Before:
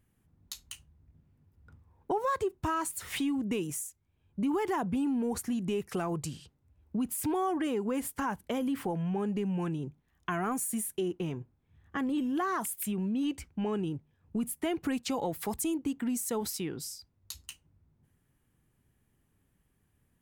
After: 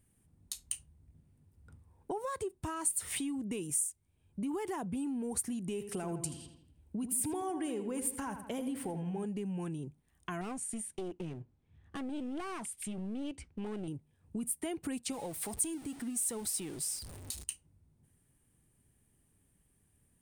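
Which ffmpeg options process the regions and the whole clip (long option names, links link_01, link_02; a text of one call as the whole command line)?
ffmpeg -i in.wav -filter_complex "[0:a]asettb=1/sr,asplit=3[link_01][link_02][link_03];[link_01]atrim=end=5.724[link_04];[link_02]atrim=start=5.72:end=9.25,asetpts=PTS-STARTPTS,afade=type=in:duration=0.004:curve=qsin,afade=type=out:start_time=3.526:duration=0.004:curve=qsin,bandreject=frequency=1200:width=13,asplit=2[link_05][link_06];[link_06]adelay=82,lowpass=frequency=3900:poles=1,volume=-9.5dB,asplit=2[link_07][link_08];[link_08]adelay=82,lowpass=frequency=3900:poles=1,volume=0.5,asplit=2[link_09][link_10];[link_10]adelay=82,lowpass=frequency=3900:poles=1,volume=0.5,asplit=2[link_11][link_12];[link_12]adelay=82,lowpass=frequency=3900:poles=1,volume=0.5,asplit=2[link_13][link_14];[link_14]adelay=82,lowpass=frequency=3900:poles=1,volume=0.5,asplit=2[link_15][link_16];[link_16]adelay=82,lowpass=frequency=3900:poles=1,volume=0.5[link_17];[link_05][link_07][link_09][link_11][link_13][link_15][link_17]amix=inputs=7:normalize=0,atrim=end_sample=155673[link_18];[link_03]atrim=start=9.246[link_19];[link_04][link_18]acrossfade=duration=0.004:curve1=hsin:curve2=qsin[link_20];[link_20][link_19]acrossfade=duration=0.004:curve1=qsin:curve2=hsin,asettb=1/sr,asplit=3[link_21][link_22][link_23];[link_21]atrim=end=10.414[link_24];[link_22]atrim=start=10.41:end=13.88,asetpts=PTS-STARTPTS,afade=type=in:duration=0.004:curve=qsin,afade=type=out:start_time=3.466:duration=0.004:curve=qsin,lowpass=5000,aeval=exprs='clip(val(0),-1,0.015)':channel_layout=same[link_25];[link_23]atrim=start=13.876[link_26];[link_24][link_25]acrossfade=duration=0.004:curve1=hsin:curve2=qsin[link_27];[link_27][link_26]acrossfade=duration=0.004:curve1=qsin:curve2=hsin,asettb=1/sr,asplit=3[link_28][link_29][link_30];[link_28]atrim=end=15.124[link_31];[link_29]atrim=start=15.12:end=17.44,asetpts=PTS-STARTPTS,afade=type=in:duration=0.004:curve=qsin,afade=type=out:start_time=2.316:duration=0.004:curve=qsin,aeval=exprs='val(0)+0.5*0.0141*sgn(val(0))':channel_layout=same,flanger=delay=0.3:depth=3.7:regen=69:speed=1.6:shape=triangular[link_32];[link_30]atrim=start=17.436[link_33];[link_31][link_32]acrossfade=duration=0.004:curve1=hsin:curve2=qsin[link_34];[link_34][link_33]acrossfade=duration=0.004:curve1=qsin:curve2=hsin,equalizer=frequency=1300:width_type=o:width=1.2:gain=-4,acompressor=threshold=-45dB:ratio=1.5,equalizer=frequency=9000:width_type=o:width=0.32:gain=15" out.wav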